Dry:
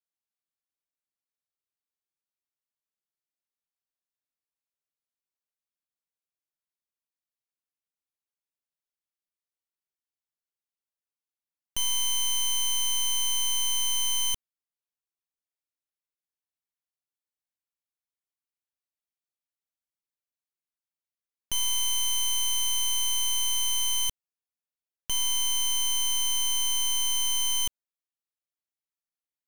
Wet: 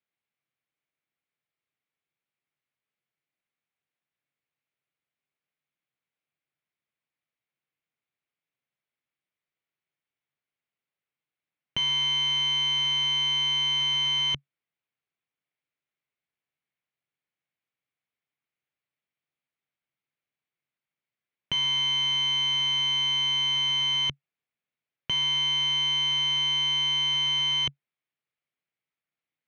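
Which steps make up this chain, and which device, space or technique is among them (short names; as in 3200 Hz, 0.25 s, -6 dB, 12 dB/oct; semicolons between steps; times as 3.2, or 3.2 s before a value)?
guitar cabinet (speaker cabinet 94–3500 Hz, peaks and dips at 140 Hz +10 dB, 950 Hz -3 dB, 2200 Hz +6 dB); gain +6.5 dB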